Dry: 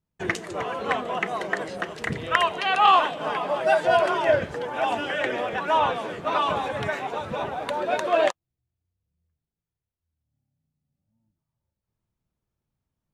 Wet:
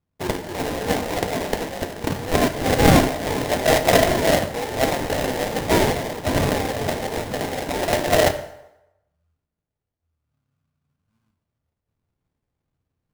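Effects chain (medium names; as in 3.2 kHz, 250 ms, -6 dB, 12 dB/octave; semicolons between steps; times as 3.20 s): sample-rate reducer 1.3 kHz, jitter 20%; on a send: reverberation RT60 0.90 s, pre-delay 5 ms, DRR 7.5 dB; on the sum: trim +3 dB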